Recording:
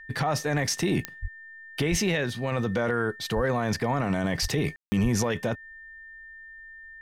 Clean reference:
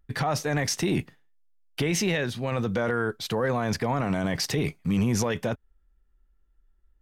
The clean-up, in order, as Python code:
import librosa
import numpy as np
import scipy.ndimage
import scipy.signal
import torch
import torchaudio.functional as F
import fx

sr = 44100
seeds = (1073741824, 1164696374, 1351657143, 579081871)

y = fx.fix_declick_ar(x, sr, threshold=10.0)
y = fx.notch(y, sr, hz=1800.0, q=30.0)
y = fx.fix_deplosive(y, sr, at_s=(1.21, 1.9, 3.35, 4.41, 5.02))
y = fx.fix_ambience(y, sr, seeds[0], print_start_s=6.08, print_end_s=6.58, start_s=4.76, end_s=4.92)